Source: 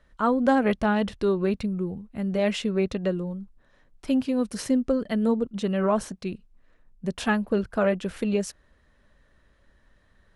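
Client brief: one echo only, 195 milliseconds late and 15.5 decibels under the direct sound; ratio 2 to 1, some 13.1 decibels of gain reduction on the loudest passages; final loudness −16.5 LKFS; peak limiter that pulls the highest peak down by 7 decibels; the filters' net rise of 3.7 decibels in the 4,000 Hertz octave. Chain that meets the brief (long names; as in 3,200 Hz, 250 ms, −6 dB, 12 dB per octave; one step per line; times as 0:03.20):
parametric band 4,000 Hz +5 dB
downward compressor 2 to 1, threshold −40 dBFS
brickwall limiter −27 dBFS
single-tap delay 195 ms −15.5 dB
level +21 dB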